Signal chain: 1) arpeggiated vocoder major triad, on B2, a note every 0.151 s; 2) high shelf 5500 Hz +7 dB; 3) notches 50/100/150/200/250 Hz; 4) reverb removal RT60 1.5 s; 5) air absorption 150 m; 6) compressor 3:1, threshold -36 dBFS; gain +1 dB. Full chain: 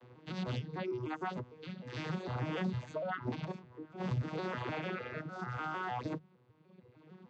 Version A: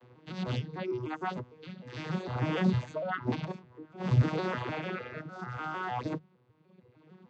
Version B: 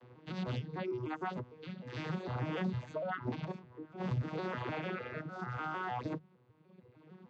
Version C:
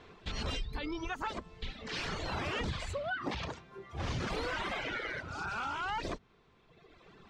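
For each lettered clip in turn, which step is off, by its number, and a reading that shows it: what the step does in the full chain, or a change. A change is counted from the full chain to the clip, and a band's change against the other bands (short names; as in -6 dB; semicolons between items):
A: 6, crest factor change +5.5 dB; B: 2, 4 kHz band -2.0 dB; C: 1, 4 kHz band +9.5 dB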